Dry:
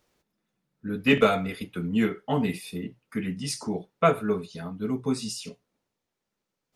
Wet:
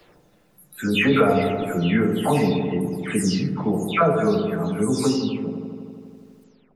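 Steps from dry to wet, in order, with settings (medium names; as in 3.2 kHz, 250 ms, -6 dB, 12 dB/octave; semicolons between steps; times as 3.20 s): delay that grows with frequency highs early, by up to 311 ms; in parallel at +1.5 dB: peak limiter -19 dBFS, peak gain reduction 10.5 dB; on the sum: feedback echo behind a low-pass 82 ms, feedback 72%, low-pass 1 kHz, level -5 dB; three bands compressed up and down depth 40%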